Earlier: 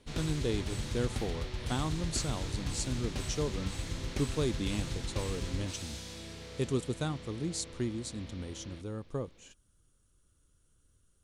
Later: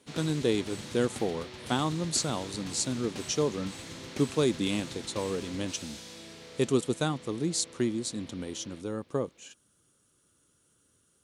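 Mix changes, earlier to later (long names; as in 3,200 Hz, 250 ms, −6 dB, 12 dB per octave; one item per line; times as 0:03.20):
speech +7.0 dB
master: add high-pass filter 180 Hz 12 dB per octave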